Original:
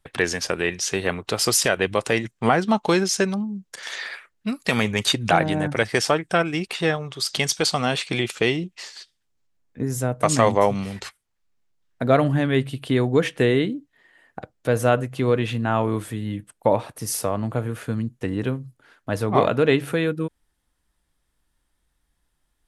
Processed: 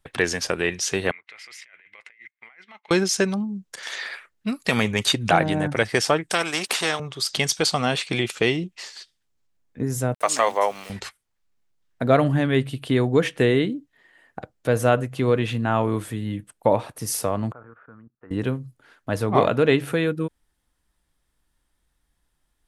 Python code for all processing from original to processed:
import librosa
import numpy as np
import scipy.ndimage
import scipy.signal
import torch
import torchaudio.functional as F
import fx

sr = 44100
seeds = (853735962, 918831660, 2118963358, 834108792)

y = fx.chain(x, sr, fx.bandpass_q(hz=2100.0, q=12.0),
    fx.over_compress(threshold_db=-48.0, ratio=-1.0), at=(1.11, 2.91))
y = fx.chain(y, sr, fx.highpass(hz=330.0, slope=12),
    fx.spectral_comp(ratio=2.0), at=(6.3, 7.0))
y = fx.chain(y, sr, fx.highpass(hz=600.0, slope=12),
    fx.sample_gate(floor_db=-43.0), at=(10.14, 10.9))
y = fx.chain(y, sr, fx.level_steps(step_db=15),
    fx.ladder_lowpass(hz=1500.0, resonance_pct=60),
    fx.low_shelf(hz=270.0, db=-11.0), at=(17.52, 18.31))